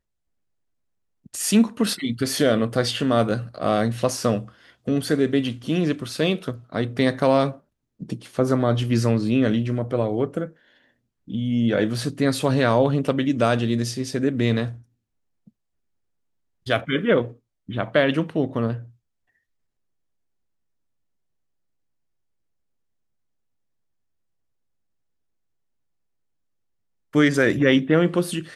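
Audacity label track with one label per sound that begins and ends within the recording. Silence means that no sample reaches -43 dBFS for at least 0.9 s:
1.260000	15.480000	sound
16.660000	18.900000	sound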